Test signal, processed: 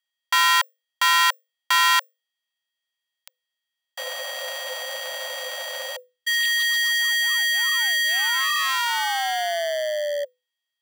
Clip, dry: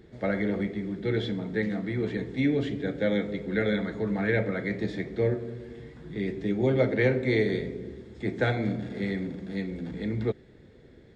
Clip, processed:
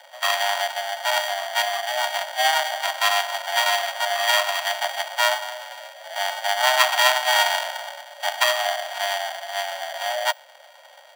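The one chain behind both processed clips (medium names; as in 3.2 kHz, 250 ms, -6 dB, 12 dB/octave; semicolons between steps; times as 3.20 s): sorted samples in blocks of 32 samples; peaking EQ 2.7 kHz +7.5 dB 1.7 oct; frequency shift +500 Hz; trim +3 dB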